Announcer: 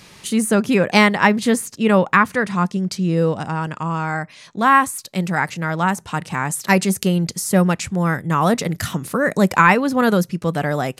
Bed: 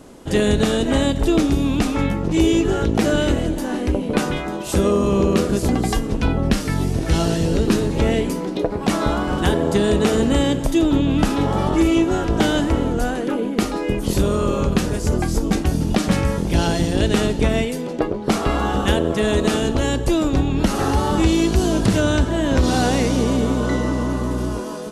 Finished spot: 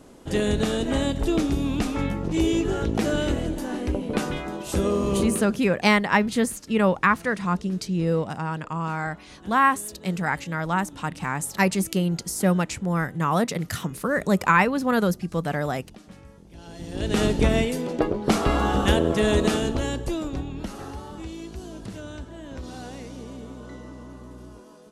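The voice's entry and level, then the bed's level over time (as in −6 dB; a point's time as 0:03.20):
4.90 s, −5.5 dB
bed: 0:05.20 −6 dB
0:05.73 −28 dB
0:16.56 −28 dB
0:17.23 −2 dB
0:19.35 −2 dB
0:21.15 −20 dB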